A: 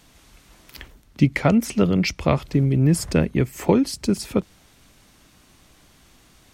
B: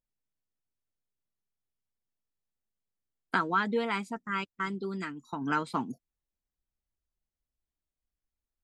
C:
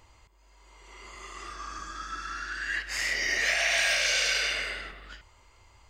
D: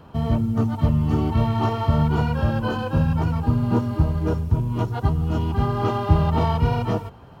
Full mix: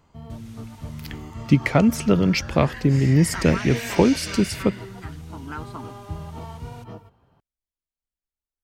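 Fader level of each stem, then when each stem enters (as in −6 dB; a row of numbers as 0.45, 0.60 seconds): +0.5, −6.0, −8.5, −16.0 decibels; 0.30, 0.00, 0.00, 0.00 seconds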